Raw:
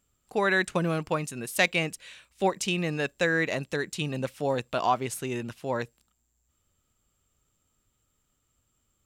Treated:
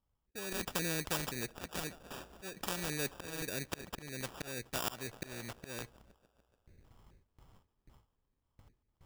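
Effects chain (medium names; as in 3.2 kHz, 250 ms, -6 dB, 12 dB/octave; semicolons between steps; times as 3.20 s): LFO low-pass square 1.9 Hz 440–4900 Hz; in parallel at -3 dB: gain riding 2 s; on the sum: peaking EQ 830 Hz -5 dB 1.2 oct; slow attack 606 ms; bass shelf 130 Hz +10 dB; gate with hold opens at -52 dBFS; on a send: feedback echo behind a high-pass 145 ms, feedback 72%, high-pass 3 kHz, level -18.5 dB; on the sum: sample-rate reducer 2.1 kHz, jitter 0%; spectrum-flattening compressor 2:1; trim -5 dB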